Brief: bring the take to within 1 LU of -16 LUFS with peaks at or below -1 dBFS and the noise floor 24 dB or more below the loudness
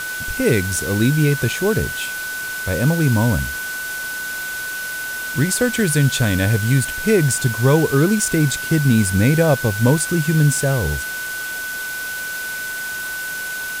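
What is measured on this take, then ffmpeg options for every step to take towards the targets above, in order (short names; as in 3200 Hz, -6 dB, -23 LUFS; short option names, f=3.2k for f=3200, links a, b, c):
steady tone 1500 Hz; tone level -25 dBFS; noise floor -27 dBFS; noise floor target -43 dBFS; loudness -19.0 LUFS; peak -1.5 dBFS; loudness target -16.0 LUFS
-> -af "bandreject=f=1.5k:w=30"
-af "afftdn=nr=16:nf=-27"
-af "volume=3dB,alimiter=limit=-1dB:level=0:latency=1"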